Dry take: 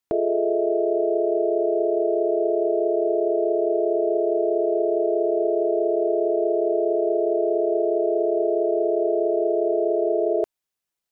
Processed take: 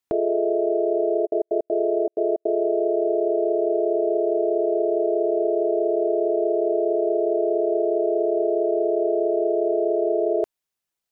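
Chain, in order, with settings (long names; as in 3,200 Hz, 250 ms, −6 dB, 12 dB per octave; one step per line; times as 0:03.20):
0:01.25–0:02.62: gate pattern ".x.xxxx.xx.xx.x" 159 BPM −60 dB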